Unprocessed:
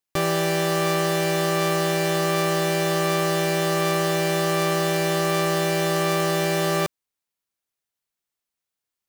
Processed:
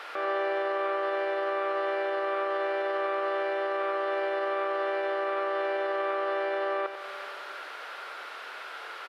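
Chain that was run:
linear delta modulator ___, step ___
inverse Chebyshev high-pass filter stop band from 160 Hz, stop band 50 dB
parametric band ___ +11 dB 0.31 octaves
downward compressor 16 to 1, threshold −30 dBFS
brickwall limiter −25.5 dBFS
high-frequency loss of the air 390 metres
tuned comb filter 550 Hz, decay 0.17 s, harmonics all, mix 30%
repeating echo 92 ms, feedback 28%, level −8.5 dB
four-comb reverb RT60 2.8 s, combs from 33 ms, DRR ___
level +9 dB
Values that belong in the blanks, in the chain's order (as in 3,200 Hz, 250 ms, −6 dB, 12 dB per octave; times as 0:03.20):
64 kbit/s, −34 dBFS, 1,400 Hz, 16.5 dB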